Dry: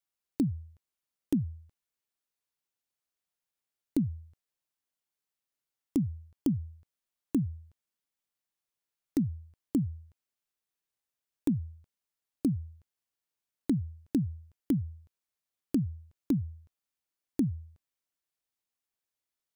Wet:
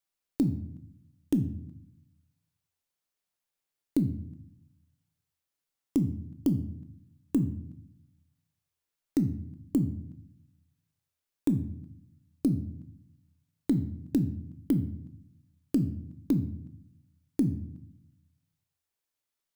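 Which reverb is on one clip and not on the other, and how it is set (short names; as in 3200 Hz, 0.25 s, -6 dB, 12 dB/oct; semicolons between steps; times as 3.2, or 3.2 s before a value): shoebox room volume 140 m³, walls mixed, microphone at 0.36 m; gain +1.5 dB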